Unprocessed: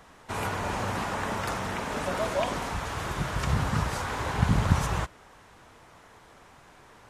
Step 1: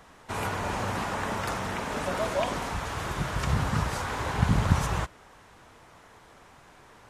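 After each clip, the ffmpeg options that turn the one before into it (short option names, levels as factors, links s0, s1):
-af anull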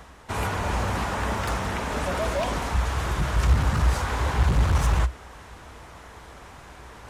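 -af "areverse,acompressor=mode=upward:threshold=0.00891:ratio=2.5,areverse,volume=17.8,asoftclip=hard,volume=0.0562,equalizer=f=61:w=2.4:g=14.5,volume=1.41"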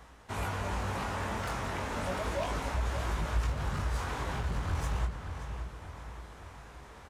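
-filter_complex "[0:a]acompressor=threshold=0.0891:ratio=6,flanger=delay=18:depth=5.6:speed=0.34,asplit=2[s0][s1];[s1]adelay=577,lowpass=f=4400:p=1,volume=0.398,asplit=2[s2][s3];[s3]adelay=577,lowpass=f=4400:p=1,volume=0.49,asplit=2[s4][s5];[s5]adelay=577,lowpass=f=4400:p=1,volume=0.49,asplit=2[s6][s7];[s7]adelay=577,lowpass=f=4400:p=1,volume=0.49,asplit=2[s8][s9];[s9]adelay=577,lowpass=f=4400:p=1,volume=0.49,asplit=2[s10][s11];[s11]adelay=577,lowpass=f=4400:p=1,volume=0.49[s12];[s0][s2][s4][s6][s8][s10][s12]amix=inputs=7:normalize=0,volume=0.596"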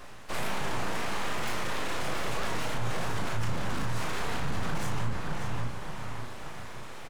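-filter_complex "[0:a]alimiter=level_in=2.24:limit=0.0631:level=0:latency=1:release=26,volume=0.447,aeval=exprs='abs(val(0))':c=same,asplit=2[s0][s1];[s1]adelay=35,volume=0.596[s2];[s0][s2]amix=inputs=2:normalize=0,volume=2.51"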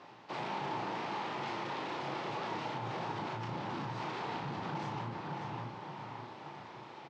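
-af "highpass=f=120:w=0.5412,highpass=f=120:w=1.3066,equalizer=f=140:t=q:w=4:g=3,equalizer=f=340:t=q:w=4:g=8,equalizer=f=870:t=q:w=4:g=10,equalizer=f=1600:t=q:w=4:g=-3,lowpass=f=5000:w=0.5412,lowpass=f=5000:w=1.3066,volume=0.447"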